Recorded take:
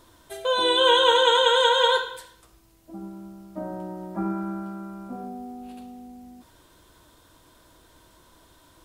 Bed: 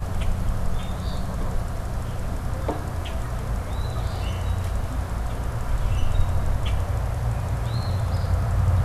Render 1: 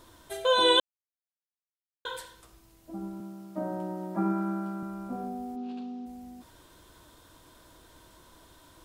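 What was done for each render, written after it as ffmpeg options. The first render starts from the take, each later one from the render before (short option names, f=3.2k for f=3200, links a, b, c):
-filter_complex "[0:a]asettb=1/sr,asplit=3[a][b][c];[a]atrim=end=3.204[d];[b]atrim=start=3.2:end=4.83,asetpts=PTS-STARTPTS,afade=t=in:d=0.004:c=qsin,afade=t=out:st=1.626:d=0.004:c=qsin,highpass=f=120:w=0.5412,highpass=f=120:w=1.3066[e];[c]atrim=start=4.826[f];[d][e]acrossfade=d=0.004:c1=hsin:c2=qsin[g];[g][f]acrossfade=d=0.004:c1=qsin:c2=hsin,asplit=3[h][i][j];[h]afade=t=out:st=5.55:d=0.02[k];[i]highpass=190,equalizer=f=230:t=q:w=4:g=7,equalizer=f=400:t=q:w=4:g=4,equalizer=f=580:t=q:w=4:g=-7,equalizer=f=2k:t=q:w=4:g=-6,lowpass=f=5.4k:w=0.5412,lowpass=f=5.4k:w=1.3066,afade=t=in:st=5.55:d=0.02,afade=t=out:st=6.05:d=0.02[l];[j]afade=t=in:st=6.05:d=0.02[m];[k][l][m]amix=inputs=3:normalize=0,asplit=3[n][o][p];[n]atrim=end=0.8,asetpts=PTS-STARTPTS,afade=t=out:st=0.796:d=0.004:c=hsin[q];[o]atrim=start=0.8:end=2.05,asetpts=PTS-STARTPTS,volume=0[r];[p]atrim=start=2.05,asetpts=PTS-STARTPTS,afade=t=in:d=0.004:c=hsin[s];[q][r][s]concat=n=3:v=0:a=1"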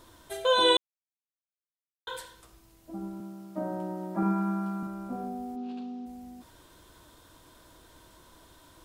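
-filter_complex "[0:a]asettb=1/sr,asplit=3[a][b][c];[a]atrim=end=4.224[d];[b]atrim=start=4.22:end=4.87,asetpts=PTS-STARTPTS,afade=t=in:d=0.004:c=qsin,afade=t=out:st=0.646:d=0.004:c=qsin,aecho=1:1:4.2:0.65,atrim=end_sample=28665[e];[c]atrim=start=4.866[f];[d][e]acrossfade=d=0.004:c1=hsin:c2=qsin[g];[g][f]acrossfade=d=0.004:c1=qsin:c2=hsin,asplit=3[h][i][j];[h]atrim=end=0.77,asetpts=PTS-STARTPTS,afade=t=out:st=0.766:d=0.004:c=hsin[k];[i]atrim=start=0.77:end=2.07,asetpts=PTS-STARTPTS,volume=0[l];[j]atrim=start=2.07,asetpts=PTS-STARTPTS,afade=t=in:d=0.004:c=hsin[m];[k][l][m]concat=n=3:v=0:a=1"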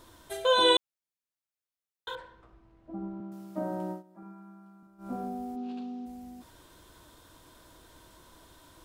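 -filter_complex "[0:a]asettb=1/sr,asplit=3[a][b][c];[a]atrim=end=2.154[d];[b]atrim=start=2.15:end=3.32,asetpts=PTS-STARTPTS,afade=t=in:d=0.004:c=qsin,afade=t=out:st=1.166:d=0.004:c=qsin,lowpass=1.6k[e];[c]atrim=start=3.316[f];[d][e]acrossfade=d=0.004:c1=hsin:c2=qsin[g];[g][f]acrossfade=d=0.004:c1=qsin:c2=hsin,asplit=3[h][i][j];[h]atrim=end=4.03,asetpts=PTS-STARTPTS,afade=t=out:st=3.91:d=0.12:silence=0.0891251[k];[i]atrim=start=4.03:end=4.98,asetpts=PTS-STARTPTS,volume=-21dB[l];[j]atrim=start=4.98,asetpts=PTS-STARTPTS,afade=t=in:d=0.12:silence=0.0891251[m];[k][l][m]concat=n=3:v=0:a=1"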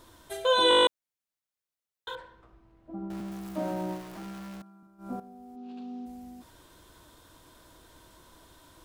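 -filter_complex "[0:a]asettb=1/sr,asplit=3[a][b][c];[a]atrim=end=3.104[d];[b]atrim=start=3.1:end=4.62,asetpts=PTS-STARTPTS,afade=t=in:d=0.004:c=qsin,afade=t=out:st=1.516:d=0.004:c=qsin,aeval=exprs='val(0)+0.5*0.0112*sgn(val(0))':c=same[e];[c]atrim=start=4.616[f];[d][e]acrossfade=d=0.004:c1=hsin:c2=qsin[g];[g][f]acrossfade=d=0.004:c1=qsin:c2=hsin,asplit=11[h][i][j][k][l][m][n][o][p][q][r];[h]atrim=end=0.712[s];[i]atrim=start=0.688:end=0.712[t];[j]atrim=start=0.688:end=0.712[u];[k]atrim=start=0.688:end=0.712[v];[l]atrim=start=0.688:end=0.712[w];[m]atrim=start=0.688:end=0.712[x];[n]atrim=start=0.688:end=0.712[y];[o]atrim=start=0.688:end=0.712[z];[p]atrim=start=0.688:end=0.712[aa];[q]atrim=start=0.868:end=5.2,asetpts=PTS-STARTPTS,afade=t=out:st=4.328:d=0.004:c=hsin:silence=0.211349[ab];[r]atrim=start=5.2,asetpts=PTS-STARTPTS,afade=t=in:d=0.76:c=qua:silence=0.211349[ac];[s][t]acrossfade=d=0.004:c1=hsin:c2=hsin[ad];[ad][u]acrossfade=d=0.004:c1=hsin:c2=hsin[ae];[ae][v]acrossfade=d=0.004:c1=hsin:c2=hsin[af];[af][w]acrossfade=d=0.004:c1=hsin:c2=hsin[ag];[ag][x]acrossfade=d=0.004:c1=hsin:c2=hsin[ah];[ah][y]acrossfade=d=0.004:c1=hsin:c2=hsin[ai];[ai][z]acrossfade=d=0.004:c1=hsin:c2=hsin[aj];[aj][aa]acrossfade=d=0.004:c1=hsin:c2=hsin[ak];[ab][ac]concat=n=2:v=0:a=1[al];[ak][al]acrossfade=d=0.004:c1=hsin:c2=hsin"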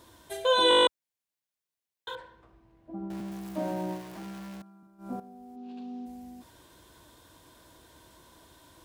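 -af "highpass=51,bandreject=f=1.3k:w=9.5"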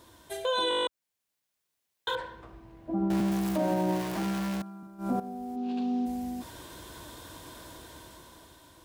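-af "dynaudnorm=f=330:g=7:m=10.5dB,alimiter=limit=-20dB:level=0:latency=1:release=89"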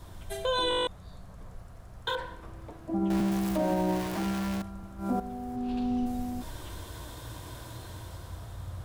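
-filter_complex "[1:a]volume=-19.5dB[a];[0:a][a]amix=inputs=2:normalize=0"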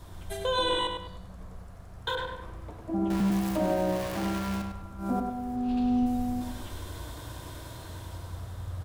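-filter_complex "[0:a]asplit=2[a][b];[b]adelay=101,lowpass=f=4.2k:p=1,volume=-5dB,asplit=2[c][d];[d]adelay=101,lowpass=f=4.2k:p=1,volume=0.39,asplit=2[e][f];[f]adelay=101,lowpass=f=4.2k:p=1,volume=0.39,asplit=2[g][h];[h]adelay=101,lowpass=f=4.2k:p=1,volume=0.39,asplit=2[i][j];[j]adelay=101,lowpass=f=4.2k:p=1,volume=0.39[k];[a][c][e][g][i][k]amix=inputs=6:normalize=0"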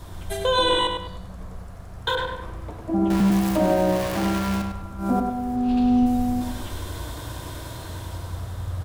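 -af "volume=7dB"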